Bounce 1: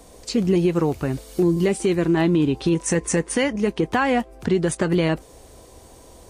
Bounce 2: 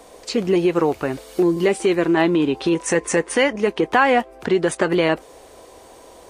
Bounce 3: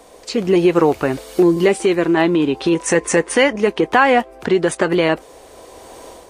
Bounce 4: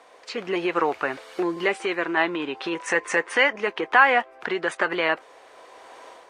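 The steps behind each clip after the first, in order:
tone controls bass -15 dB, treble -7 dB; gain +6 dB
AGC gain up to 8.5 dB
band-pass 1600 Hz, Q 1

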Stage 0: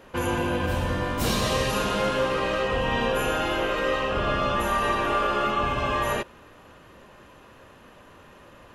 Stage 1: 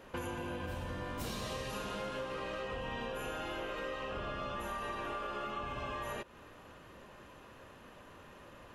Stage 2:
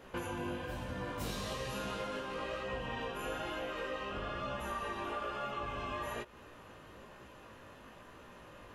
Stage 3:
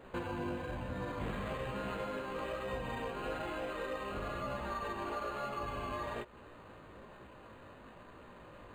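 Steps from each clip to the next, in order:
compressor 6:1, threshold -33 dBFS, peak gain reduction 12.5 dB; gain -4.5 dB
chorus 1.1 Hz, delay 15.5 ms, depth 4.6 ms; gain +3.5 dB
decimation joined by straight lines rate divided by 8×; gain +1 dB

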